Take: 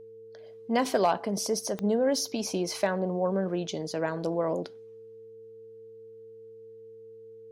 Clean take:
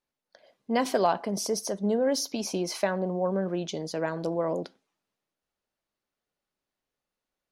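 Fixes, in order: clip repair -15 dBFS; de-click; de-hum 111.3 Hz, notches 4; band-stop 450 Hz, Q 30

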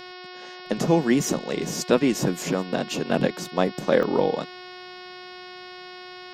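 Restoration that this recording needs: de-hum 363.8 Hz, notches 15; interpolate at 4.03 s, 2.8 ms

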